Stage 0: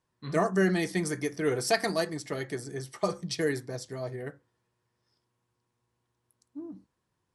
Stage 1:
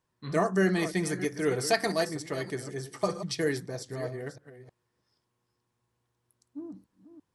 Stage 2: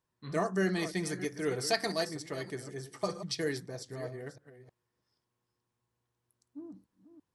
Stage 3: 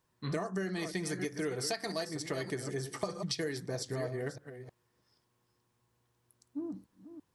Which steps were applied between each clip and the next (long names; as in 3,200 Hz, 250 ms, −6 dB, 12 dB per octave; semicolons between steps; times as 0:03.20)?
delay that plays each chunk backwards 313 ms, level −12 dB
dynamic equaliser 4,500 Hz, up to +5 dB, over −46 dBFS, Q 1.4; level −5 dB
downward compressor 16 to 1, threshold −39 dBFS, peak gain reduction 17 dB; level +7.5 dB